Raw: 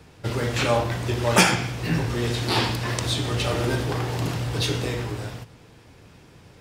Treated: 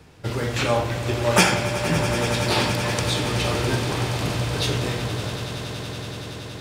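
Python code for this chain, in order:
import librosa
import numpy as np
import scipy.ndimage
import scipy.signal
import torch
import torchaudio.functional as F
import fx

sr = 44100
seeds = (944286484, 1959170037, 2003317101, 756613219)

y = fx.echo_swell(x, sr, ms=94, loudest=8, wet_db=-14.5)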